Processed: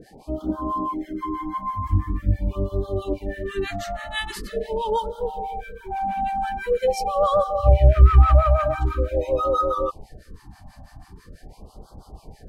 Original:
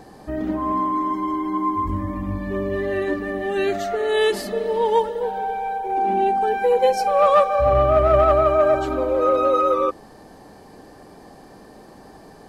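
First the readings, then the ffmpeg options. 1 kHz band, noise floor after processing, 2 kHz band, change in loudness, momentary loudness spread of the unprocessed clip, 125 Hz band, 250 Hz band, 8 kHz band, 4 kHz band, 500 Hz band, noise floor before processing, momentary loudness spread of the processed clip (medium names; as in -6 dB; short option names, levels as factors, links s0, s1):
-5.0 dB, -52 dBFS, -4.5 dB, -2.5 dB, 10 LU, +9.5 dB, -5.0 dB, no reading, -3.0 dB, -6.0 dB, -45 dBFS, 14 LU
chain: -filter_complex "[0:a]asubboost=boost=9:cutoff=87,acrossover=split=840[s0][s1];[s0]aeval=exprs='val(0)*(1-1/2+1/2*cos(2*PI*6.1*n/s))':c=same[s2];[s1]aeval=exprs='val(0)*(1-1/2-1/2*cos(2*PI*6.1*n/s))':c=same[s3];[s2][s3]amix=inputs=2:normalize=0,afftfilt=real='re*(1-between(b*sr/1024,390*pow(2200/390,0.5+0.5*sin(2*PI*0.44*pts/sr))/1.41,390*pow(2200/390,0.5+0.5*sin(2*PI*0.44*pts/sr))*1.41))':imag='im*(1-between(b*sr/1024,390*pow(2200/390,0.5+0.5*sin(2*PI*0.44*pts/sr))/1.41,390*pow(2200/390,0.5+0.5*sin(2*PI*0.44*pts/sr))*1.41))':win_size=1024:overlap=0.75,volume=1.26"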